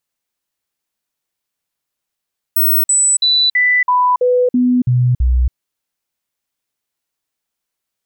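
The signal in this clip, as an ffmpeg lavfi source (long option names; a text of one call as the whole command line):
ffmpeg -f lavfi -i "aevalsrc='0.335*clip(min(mod(t,0.33),0.28-mod(t,0.33))/0.005,0,1)*sin(2*PI*15900*pow(2,-floor(t/0.33)/1)*mod(t,0.33))':duration=2.97:sample_rate=44100" out.wav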